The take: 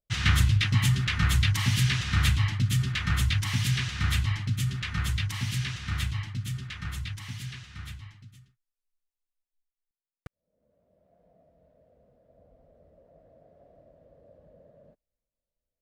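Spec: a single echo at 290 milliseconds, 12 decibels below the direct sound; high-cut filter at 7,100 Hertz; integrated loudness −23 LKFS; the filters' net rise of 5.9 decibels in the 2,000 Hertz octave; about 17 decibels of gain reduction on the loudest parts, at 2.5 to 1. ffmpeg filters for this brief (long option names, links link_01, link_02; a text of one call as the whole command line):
ffmpeg -i in.wav -af "lowpass=7100,equalizer=frequency=2000:width_type=o:gain=7,acompressor=threshold=-44dB:ratio=2.5,aecho=1:1:290:0.251,volume=17dB" out.wav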